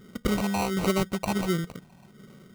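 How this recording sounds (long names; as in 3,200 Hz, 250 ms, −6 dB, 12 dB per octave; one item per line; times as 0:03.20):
phaser sweep stages 8, 1.4 Hz, lowest notch 430–1,300 Hz
aliases and images of a low sample rate 1,700 Hz, jitter 0%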